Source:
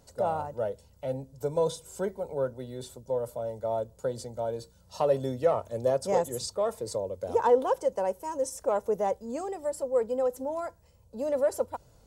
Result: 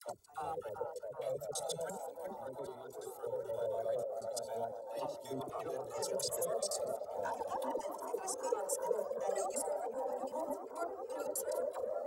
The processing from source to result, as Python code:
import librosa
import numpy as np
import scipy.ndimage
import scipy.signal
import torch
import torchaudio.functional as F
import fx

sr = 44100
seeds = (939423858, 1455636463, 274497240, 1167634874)

p1 = fx.block_reorder(x, sr, ms=86.0, group=3)
p2 = fx.highpass(p1, sr, hz=270.0, slope=6)
p3 = fx.high_shelf(p2, sr, hz=5400.0, db=12.0)
p4 = fx.notch(p3, sr, hz=1000.0, q=15.0)
p5 = fx.level_steps(p4, sr, step_db=18)
p6 = fx.dispersion(p5, sr, late='lows', ms=84.0, hz=610.0)
p7 = p6 + fx.echo_wet_bandpass(p6, sr, ms=384, feedback_pct=84, hz=700.0, wet_db=-5, dry=0)
p8 = fx.comb_cascade(p7, sr, direction='rising', hz=0.38)
y = p8 * 10.0 ** (1.5 / 20.0)